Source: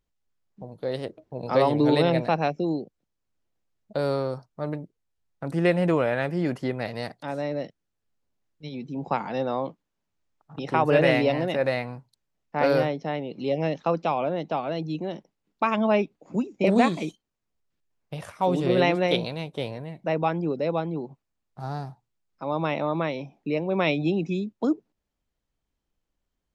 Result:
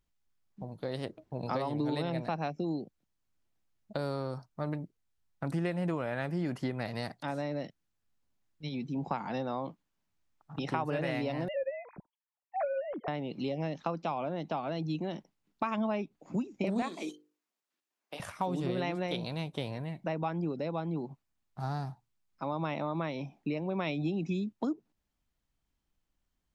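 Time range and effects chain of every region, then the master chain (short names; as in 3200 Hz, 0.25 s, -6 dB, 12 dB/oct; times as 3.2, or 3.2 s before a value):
11.48–13.08 sine-wave speech + tilt -2.5 dB/oct
16.82–18.2 HPF 280 Hz 24 dB/oct + notches 50/100/150/200/250/300/350/400/450/500 Hz
whole clip: dynamic EQ 2500 Hz, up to -4 dB, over -39 dBFS, Q 0.9; compressor 4:1, threshold -28 dBFS; bell 480 Hz -6 dB 0.85 oct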